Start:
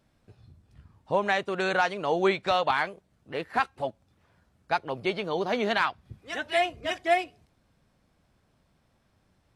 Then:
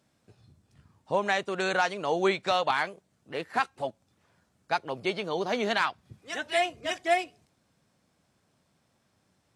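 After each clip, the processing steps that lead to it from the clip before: HPF 110 Hz 12 dB/oct; bell 7300 Hz +7 dB 1.2 oct; gain -1.5 dB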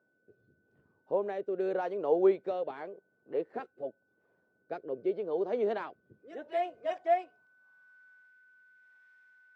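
rotary speaker horn 0.85 Hz; whine 1500 Hz -61 dBFS; band-pass sweep 430 Hz -> 1800 Hz, 6.37–8.3; gain +4.5 dB

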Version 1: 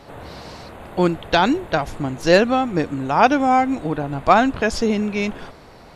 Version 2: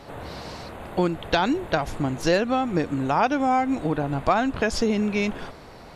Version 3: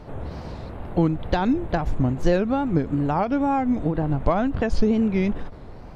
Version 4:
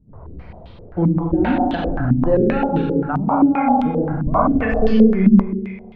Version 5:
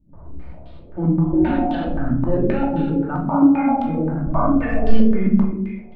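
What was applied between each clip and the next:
compressor 3:1, threshold -19 dBFS, peak gain reduction 9 dB
wow and flutter 140 cents; tilt -3 dB/oct; ending taper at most 160 dB/s; gain -3 dB
per-bin expansion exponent 1.5; Schroeder reverb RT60 1.6 s, combs from 32 ms, DRR -3 dB; stepped low-pass 7.6 Hz 220–3300 Hz
shoebox room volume 630 m³, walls furnished, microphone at 2.6 m; gain -7.5 dB

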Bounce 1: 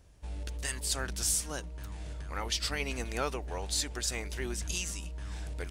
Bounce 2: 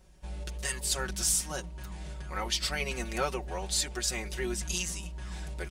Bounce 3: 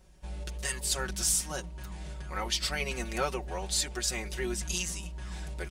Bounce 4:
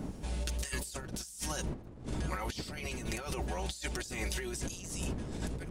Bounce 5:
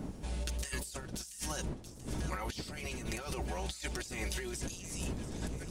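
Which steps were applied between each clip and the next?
comb 5.4 ms, depth 83%
nothing audible
wind noise 250 Hz -31 dBFS; high shelf 3100 Hz +7 dB; negative-ratio compressor -36 dBFS, ratio -1; gain -3.5 dB
thin delay 0.684 s, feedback 61%, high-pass 2600 Hz, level -12 dB; gain -1.5 dB

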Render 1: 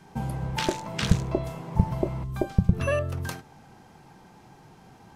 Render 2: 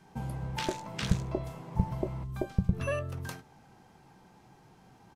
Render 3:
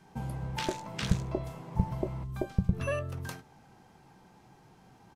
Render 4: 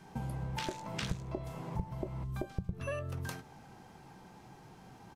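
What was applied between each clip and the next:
doubler 16 ms -14 dB; gain -6.5 dB
nothing audible
compressor 3:1, threshold -40 dBFS, peak gain reduction 15.5 dB; gain +3.5 dB

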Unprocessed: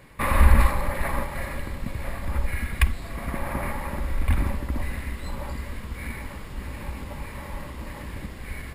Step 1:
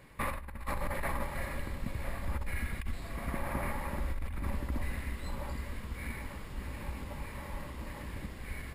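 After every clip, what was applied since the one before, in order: negative-ratio compressor -25 dBFS, ratio -1; gain -8.5 dB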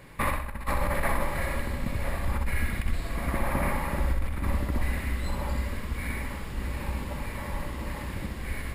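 flutter echo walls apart 10.9 m, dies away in 0.55 s; gain +6.5 dB

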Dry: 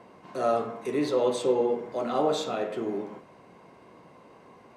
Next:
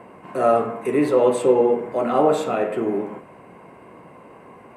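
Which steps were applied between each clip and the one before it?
band shelf 4700 Hz -12 dB 1.2 oct; gain +8 dB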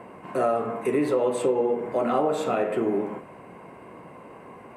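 compressor 5:1, threshold -20 dBFS, peak gain reduction 9 dB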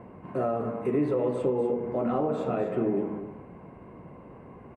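RIAA curve playback; echo 0.247 s -10 dB; gain -7 dB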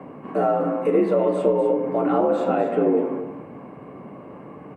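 frequency shift +58 Hz; reverb RT60 0.30 s, pre-delay 7 ms, DRR 10.5 dB; gain +6.5 dB

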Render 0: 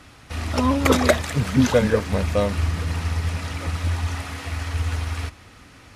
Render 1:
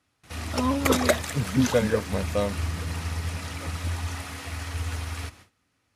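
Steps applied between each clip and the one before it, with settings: gate with hold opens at -35 dBFS; HPF 72 Hz; high shelf 7100 Hz +7.5 dB; gain -4.5 dB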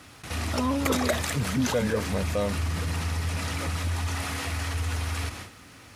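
in parallel at -6.5 dB: soft clip -23 dBFS, distortion -9 dB; on the sum: fast leveller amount 50%; gain -7 dB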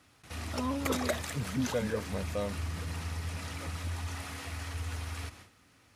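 upward expander 1.5:1, over -40 dBFS; gain -5 dB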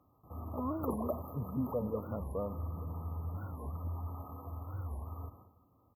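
brick-wall FIR band-stop 1300–12000 Hz; feedback echo 96 ms, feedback 58%, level -17.5 dB; record warp 45 rpm, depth 250 cents; gain -3 dB

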